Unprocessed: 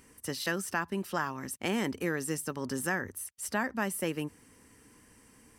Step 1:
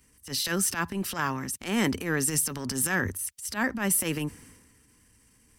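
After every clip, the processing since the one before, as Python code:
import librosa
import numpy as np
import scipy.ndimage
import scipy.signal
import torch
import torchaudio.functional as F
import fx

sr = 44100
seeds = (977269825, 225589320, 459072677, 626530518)

y = fx.transient(x, sr, attack_db=-12, sustain_db=5)
y = fx.peak_eq(y, sr, hz=630.0, db=-6.5, octaves=2.7)
y = fx.band_widen(y, sr, depth_pct=40)
y = F.gain(torch.from_numpy(y), 9.0).numpy()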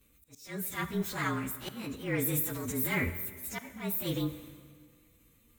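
y = fx.partial_stretch(x, sr, pct=111)
y = fx.auto_swell(y, sr, attack_ms=590.0)
y = fx.rev_plate(y, sr, seeds[0], rt60_s=1.9, hf_ratio=0.8, predelay_ms=0, drr_db=10.5)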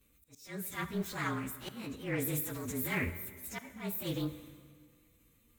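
y = fx.doppler_dist(x, sr, depth_ms=0.18)
y = F.gain(torch.from_numpy(y), -3.0).numpy()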